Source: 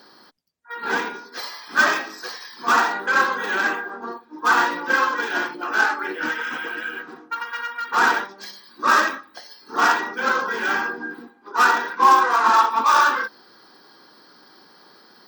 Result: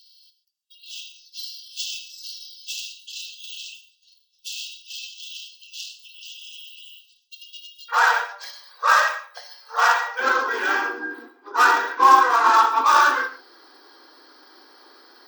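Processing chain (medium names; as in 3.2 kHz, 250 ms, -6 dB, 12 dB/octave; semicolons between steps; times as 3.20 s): brick-wall FIR high-pass 2.6 kHz, from 7.88 s 450 Hz, from 10.19 s 250 Hz; gated-style reverb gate 160 ms flat, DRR 10.5 dB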